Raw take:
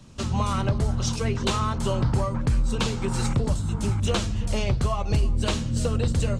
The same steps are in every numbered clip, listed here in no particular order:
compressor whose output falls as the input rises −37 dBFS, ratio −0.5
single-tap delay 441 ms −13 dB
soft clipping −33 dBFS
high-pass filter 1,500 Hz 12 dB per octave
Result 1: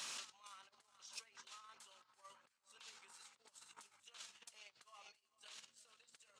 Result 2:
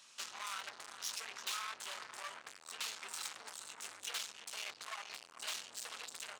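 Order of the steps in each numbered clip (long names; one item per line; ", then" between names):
single-tap delay, then compressor whose output falls as the input rises, then high-pass filter, then soft clipping
single-tap delay, then soft clipping, then high-pass filter, then compressor whose output falls as the input rises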